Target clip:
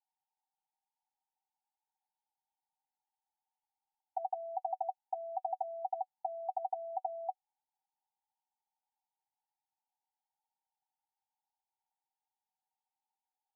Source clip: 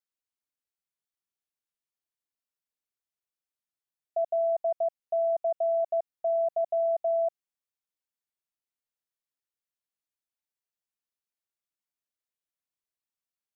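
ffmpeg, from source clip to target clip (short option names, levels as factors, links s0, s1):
-af "asuperpass=centerf=840:order=12:qfactor=4.2,volume=7.94"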